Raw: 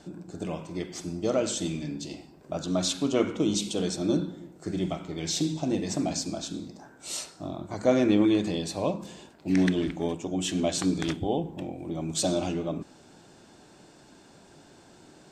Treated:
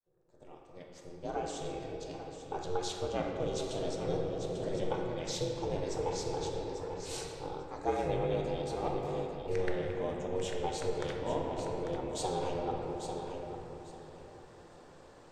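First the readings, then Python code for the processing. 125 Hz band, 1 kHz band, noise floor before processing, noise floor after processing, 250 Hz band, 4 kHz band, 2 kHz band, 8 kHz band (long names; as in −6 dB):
−7.0 dB, +0.5 dB, −54 dBFS, −55 dBFS, −13.5 dB, −9.5 dB, −6.5 dB, −11.5 dB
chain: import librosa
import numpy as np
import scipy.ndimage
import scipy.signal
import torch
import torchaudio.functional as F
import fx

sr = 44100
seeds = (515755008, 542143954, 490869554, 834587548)

y = fx.fade_in_head(x, sr, length_s=3.0)
y = fx.high_shelf(y, sr, hz=2100.0, db=-10.5)
y = y * np.sin(2.0 * np.pi * 180.0 * np.arange(len(y)) / sr)
y = fx.low_shelf(y, sr, hz=400.0, db=-10.0)
y = fx.echo_feedback(y, sr, ms=845, feedback_pct=22, wet_db=-11)
y = fx.room_shoebox(y, sr, seeds[0], volume_m3=200.0, walls='hard', distance_m=0.39)
y = fx.rider(y, sr, range_db=3, speed_s=0.5)
y = fx.end_taper(y, sr, db_per_s=180.0)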